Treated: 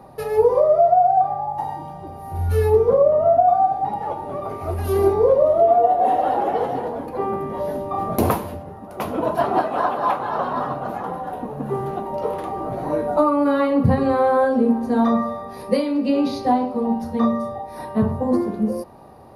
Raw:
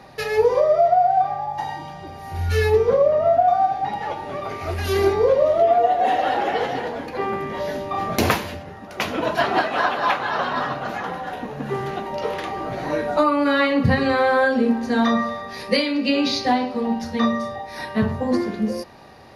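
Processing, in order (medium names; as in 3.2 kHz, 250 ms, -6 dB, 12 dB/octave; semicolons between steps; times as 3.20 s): high-order bell 3.3 kHz -14 dB 2.5 oct; trim +1.5 dB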